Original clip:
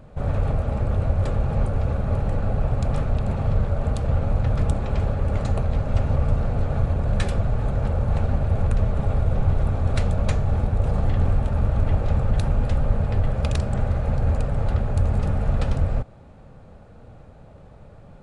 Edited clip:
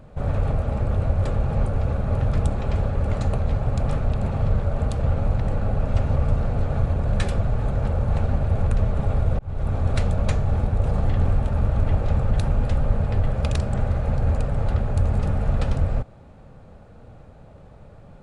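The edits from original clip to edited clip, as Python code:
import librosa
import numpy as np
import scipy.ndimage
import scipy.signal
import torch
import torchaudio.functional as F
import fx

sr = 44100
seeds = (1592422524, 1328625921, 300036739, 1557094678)

y = fx.edit(x, sr, fx.swap(start_s=2.21, length_s=0.45, other_s=4.45, other_length_s=1.4),
    fx.fade_in_span(start_s=9.39, length_s=0.36), tone=tone)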